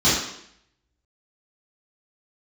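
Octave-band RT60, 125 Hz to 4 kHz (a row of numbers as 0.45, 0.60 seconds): 0.65, 0.75, 0.75, 0.70, 0.75, 0.70 seconds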